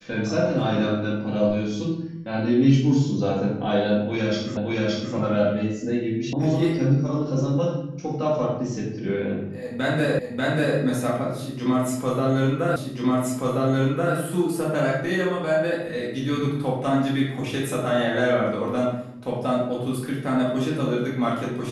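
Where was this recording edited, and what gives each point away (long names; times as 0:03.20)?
0:04.57: the same again, the last 0.57 s
0:06.33: cut off before it has died away
0:10.19: the same again, the last 0.59 s
0:12.76: the same again, the last 1.38 s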